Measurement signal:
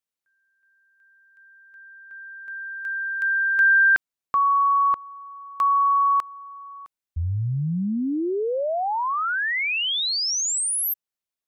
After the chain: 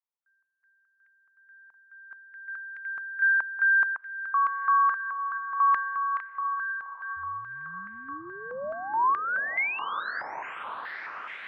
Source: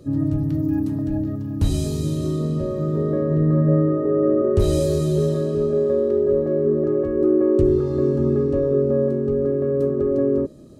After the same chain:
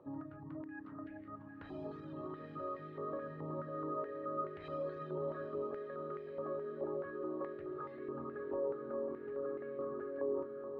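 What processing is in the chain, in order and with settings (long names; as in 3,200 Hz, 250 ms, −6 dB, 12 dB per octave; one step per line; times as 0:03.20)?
reverb reduction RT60 1.1 s
brickwall limiter −18.5 dBFS
high-frequency loss of the air 400 metres
feedback delay with all-pass diffusion 812 ms, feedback 71%, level −8 dB
band-pass on a step sequencer 4.7 Hz 940–2,000 Hz
level +5 dB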